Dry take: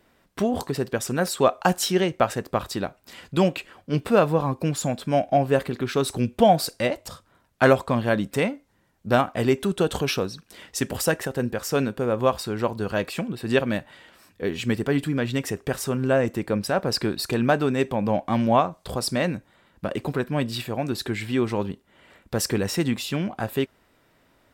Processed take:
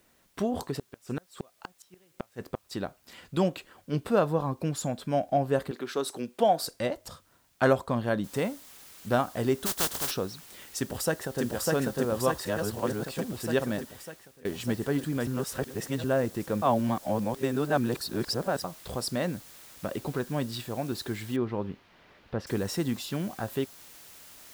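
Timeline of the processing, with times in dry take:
0.63–2.79 flipped gate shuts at -14 dBFS, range -36 dB
5.71–6.62 HPF 300 Hz
8.24 noise floor step -63 dB -45 dB
9.65–10.1 spectral contrast lowered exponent 0.23
10.78–11.44 echo throw 0.6 s, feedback 75%, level -1 dB
12.45–13.05 reverse
13.76–14.45 fade out, to -21.5 dB
15.27–16.04 reverse
16.62–18.64 reverse
21.36–22.47 air absorption 320 m
whole clip: dynamic EQ 2400 Hz, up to -7 dB, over -45 dBFS, Q 2.4; gain -5.5 dB

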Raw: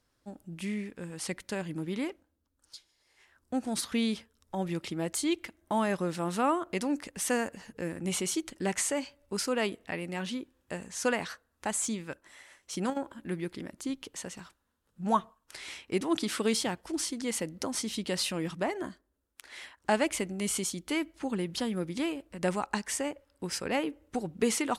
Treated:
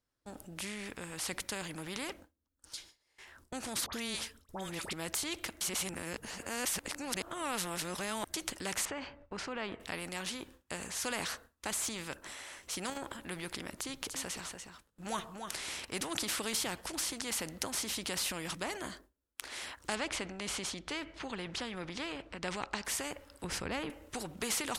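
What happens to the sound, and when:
3.86–4.93 dispersion highs, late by 69 ms, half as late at 1400 Hz
5.61–8.34 reverse
8.85–9.8 LPF 1700 Hz
13.79–15.85 echo 0.291 s -13.5 dB
19.95–22.85 LPF 3800 Hz
23.44–23.9 RIAA curve playback
whole clip: gate with hold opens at -54 dBFS; transient shaper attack 0 dB, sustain +5 dB; spectral compressor 2:1

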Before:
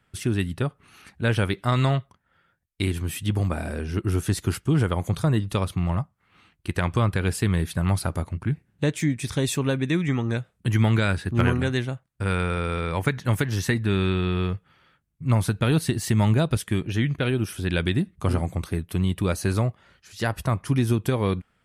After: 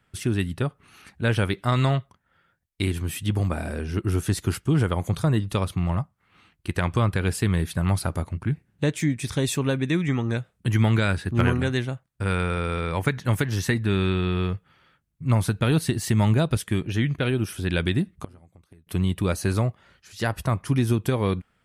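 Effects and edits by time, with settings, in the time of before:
18.18–18.87 flipped gate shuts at -22 dBFS, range -27 dB

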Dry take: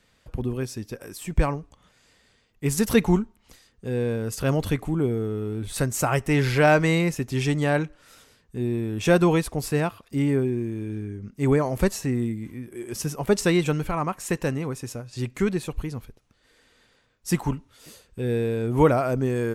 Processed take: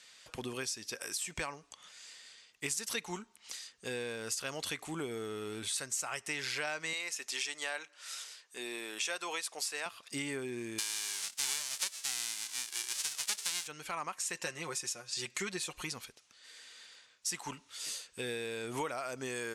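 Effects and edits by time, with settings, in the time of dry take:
6.93–9.86 HPF 480 Hz
10.78–13.66 spectral whitening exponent 0.1
14.34–15.93 comb 5.6 ms
whole clip: weighting filter ITU-R 468; compressor 6:1, threshold -35 dBFS

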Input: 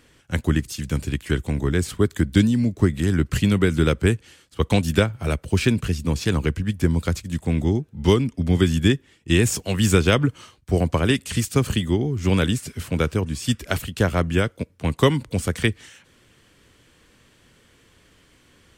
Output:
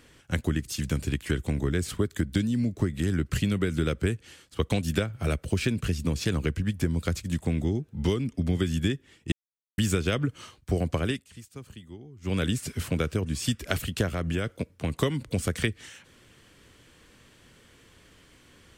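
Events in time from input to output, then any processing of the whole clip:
9.32–9.78 mute
10.97–12.5 dip -23 dB, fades 0.29 s
14.13–14.98 compressor 3:1, threshold -23 dBFS
whole clip: dynamic EQ 930 Hz, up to -6 dB, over -45 dBFS, Q 3.2; compressor 4:1, threshold -23 dBFS

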